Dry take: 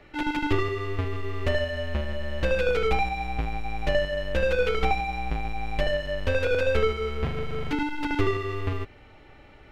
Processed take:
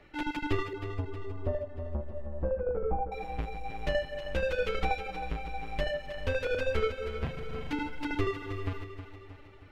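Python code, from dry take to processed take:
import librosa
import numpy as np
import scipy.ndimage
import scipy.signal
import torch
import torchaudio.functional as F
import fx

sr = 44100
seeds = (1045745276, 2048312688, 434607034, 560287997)

y = fx.dereverb_blind(x, sr, rt60_s=0.86)
y = fx.lowpass(y, sr, hz=1000.0, slope=24, at=(0.73, 3.12))
y = fx.echo_feedback(y, sr, ms=316, feedback_pct=52, wet_db=-10.5)
y = F.gain(torch.from_numpy(y), -5.0).numpy()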